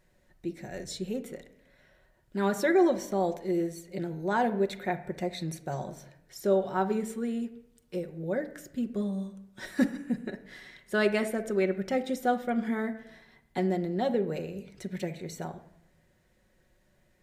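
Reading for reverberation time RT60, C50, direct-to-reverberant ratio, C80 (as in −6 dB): 0.80 s, 13.5 dB, 5.0 dB, 16.5 dB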